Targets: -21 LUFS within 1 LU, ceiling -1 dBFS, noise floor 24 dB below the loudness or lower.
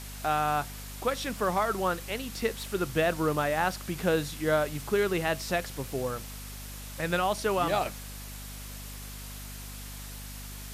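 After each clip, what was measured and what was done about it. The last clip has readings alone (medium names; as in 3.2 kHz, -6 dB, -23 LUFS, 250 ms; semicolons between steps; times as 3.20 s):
hum 50 Hz; highest harmonic 250 Hz; hum level -40 dBFS; noise floor -41 dBFS; noise floor target -54 dBFS; loudness -29.5 LUFS; peak level -13.0 dBFS; loudness target -21.0 LUFS
-> de-hum 50 Hz, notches 5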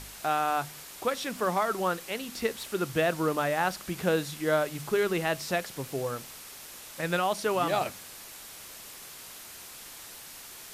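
hum not found; noise floor -46 dBFS; noise floor target -54 dBFS
-> noise reduction 8 dB, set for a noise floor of -46 dBFS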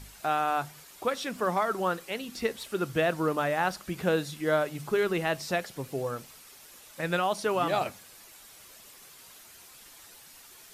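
noise floor -52 dBFS; noise floor target -54 dBFS
-> noise reduction 6 dB, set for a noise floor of -52 dBFS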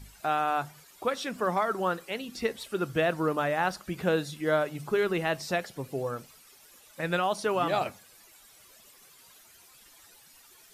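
noise floor -56 dBFS; loudness -30.0 LUFS; peak level -14.0 dBFS; loudness target -21.0 LUFS
-> trim +9 dB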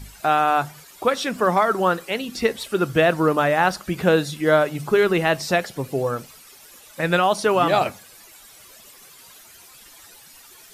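loudness -21.0 LUFS; peak level -5.0 dBFS; noise floor -47 dBFS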